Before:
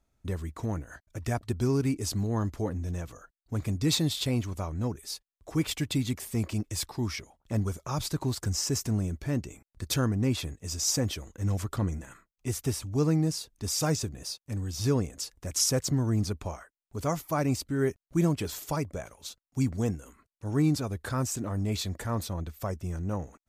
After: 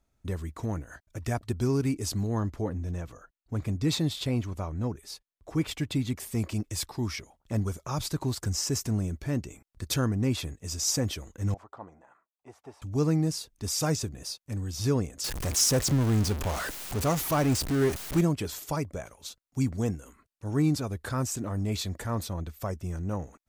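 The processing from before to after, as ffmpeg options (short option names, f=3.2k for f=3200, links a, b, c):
-filter_complex "[0:a]asettb=1/sr,asplit=3[a][b][c];[a]atrim=end=2.404[d];[b]atrim=start=2.4:end=6.18,asetpts=PTS-STARTPTS,afade=t=in:d=0.004:c=qsin,afade=t=out:st=3.776:d=0.004:c=qsin,highshelf=f=4k:g=-7[e];[c]atrim=start=6.176[f];[d][e]acrossfade=d=0.004:c1=hsin:c2=qsin[g];[g][f]acrossfade=d=0.004:c1=qsin:c2=hsin,asettb=1/sr,asplit=3[h][i][j];[h]atrim=end=11.544[k];[i]atrim=start=11.54:end=12.82,asetpts=PTS-STARTPTS,afade=t=in:d=0.004:c=qsin,afade=t=out:st=1.276:d=0.004:c=qsin,bandpass=f=810:t=q:w=2.7[l];[j]atrim=start=12.816[m];[k][l]acrossfade=d=0.004:c1=hsin:c2=qsin[n];[n][m]acrossfade=d=0.004:c1=qsin:c2=hsin,asettb=1/sr,asplit=3[o][p][q];[o]atrim=end=15.244[r];[p]atrim=start=15.24:end=18.21,asetpts=PTS-STARTPTS,afade=t=in:d=0.004:c=qsin,afade=t=out:st=2.966:d=0.004:c=qsin,aeval=exprs='val(0)+0.5*0.0398*sgn(val(0))':c=same[s];[q]atrim=start=18.206[t];[r][s]acrossfade=d=0.004:c1=hsin:c2=qsin[u];[u][t]acrossfade=d=0.004:c1=qsin:c2=hsin"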